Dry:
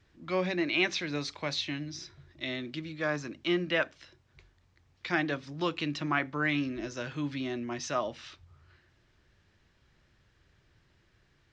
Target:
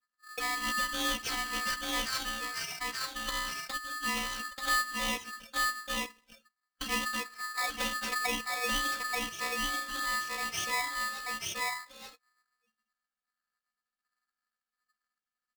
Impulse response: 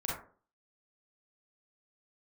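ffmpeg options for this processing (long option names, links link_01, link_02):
-filter_complex "[0:a]aphaser=in_gain=1:out_gain=1:delay=2.3:decay=0.38:speed=2:type=sinusoidal,afftdn=noise_reduction=36:noise_floor=-49,afftfilt=real='hypot(re,im)*cos(PI*b)':imag='0':win_size=512:overlap=0.75,highpass=frequency=170:width=0.5412,highpass=frequency=170:width=1.3066,asplit=2[link_01][link_02];[link_02]aecho=0:1:655:0.668[link_03];[link_01][link_03]amix=inputs=2:normalize=0,deesser=0.6,asetrate=32667,aresample=44100,equalizer=frequency=5500:width=1.9:gain=10,acompressor=threshold=-42dB:ratio=2,aeval=exprs='val(0)*sgn(sin(2*PI*1500*n/s))':channel_layout=same,volume=7dB"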